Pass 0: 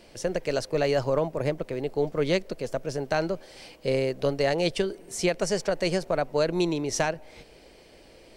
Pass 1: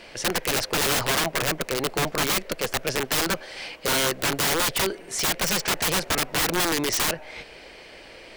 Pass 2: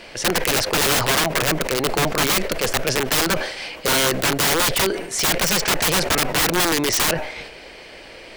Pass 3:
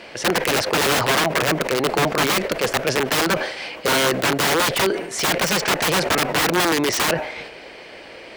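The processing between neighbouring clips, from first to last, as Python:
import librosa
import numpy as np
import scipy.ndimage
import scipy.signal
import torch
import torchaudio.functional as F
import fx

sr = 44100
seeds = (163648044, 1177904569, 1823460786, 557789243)

y1 = fx.peak_eq(x, sr, hz=1900.0, db=12.5, octaves=2.8)
y1 = (np.mod(10.0 ** (19.0 / 20.0) * y1 + 1.0, 2.0) - 1.0) / 10.0 ** (19.0 / 20.0)
y1 = F.gain(torch.from_numpy(y1), 1.5).numpy()
y2 = fx.sustainer(y1, sr, db_per_s=70.0)
y2 = F.gain(torch.from_numpy(y2), 4.5).numpy()
y3 = fx.highpass(y2, sr, hz=150.0, slope=6)
y3 = fx.high_shelf(y3, sr, hz=4000.0, db=-8.0)
y3 = F.gain(torch.from_numpy(y3), 2.5).numpy()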